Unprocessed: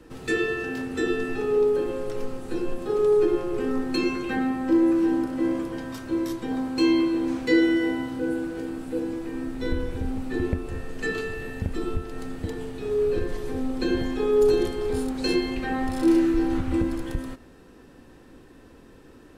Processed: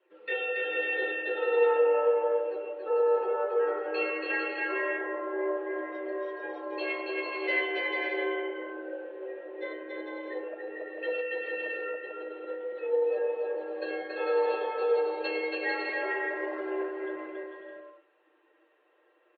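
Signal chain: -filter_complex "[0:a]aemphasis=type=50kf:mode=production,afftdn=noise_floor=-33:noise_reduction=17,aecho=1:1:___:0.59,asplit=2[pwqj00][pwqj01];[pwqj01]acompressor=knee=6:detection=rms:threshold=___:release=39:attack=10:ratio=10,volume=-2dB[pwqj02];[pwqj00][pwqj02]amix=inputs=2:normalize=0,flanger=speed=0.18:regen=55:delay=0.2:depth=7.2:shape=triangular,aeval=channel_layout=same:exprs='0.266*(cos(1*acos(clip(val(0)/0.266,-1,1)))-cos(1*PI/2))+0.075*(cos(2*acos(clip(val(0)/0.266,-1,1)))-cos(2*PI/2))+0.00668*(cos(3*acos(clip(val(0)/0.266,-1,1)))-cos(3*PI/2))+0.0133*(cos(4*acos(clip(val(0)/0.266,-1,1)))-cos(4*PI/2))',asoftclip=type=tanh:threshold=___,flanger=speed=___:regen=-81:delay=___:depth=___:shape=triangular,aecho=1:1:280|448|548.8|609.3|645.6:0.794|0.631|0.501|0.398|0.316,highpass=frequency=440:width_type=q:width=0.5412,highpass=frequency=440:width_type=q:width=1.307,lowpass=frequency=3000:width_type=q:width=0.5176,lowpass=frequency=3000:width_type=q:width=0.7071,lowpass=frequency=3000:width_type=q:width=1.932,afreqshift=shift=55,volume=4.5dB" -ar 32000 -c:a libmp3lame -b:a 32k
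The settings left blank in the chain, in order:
7.1, -31dB, -8.5dB, 0.36, 7.6, 7.7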